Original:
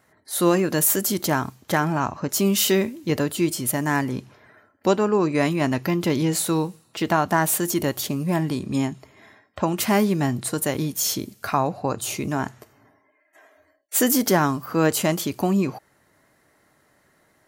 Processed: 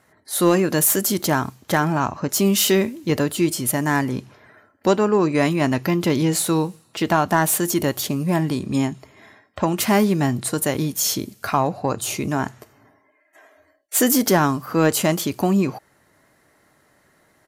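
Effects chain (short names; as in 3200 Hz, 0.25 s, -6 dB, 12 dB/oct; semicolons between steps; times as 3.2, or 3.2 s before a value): in parallel at -9.5 dB: overloaded stage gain 14.5 dB; on the sum: downsampling 32000 Hz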